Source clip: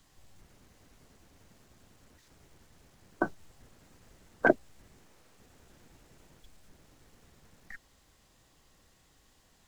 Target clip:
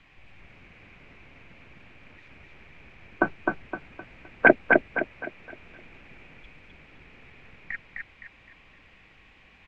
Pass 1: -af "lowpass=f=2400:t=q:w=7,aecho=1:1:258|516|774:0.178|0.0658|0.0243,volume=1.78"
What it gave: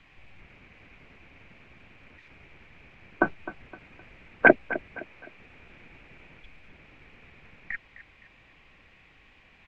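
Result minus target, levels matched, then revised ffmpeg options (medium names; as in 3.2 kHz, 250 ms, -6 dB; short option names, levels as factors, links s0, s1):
echo-to-direct -12 dB
-af "lowpass=f=2400:t=q:w=7,aecho=1:1:258|516|774|1032|1290:0.708|0.262|0.0969|0.0359|0.0133,volume=1.78"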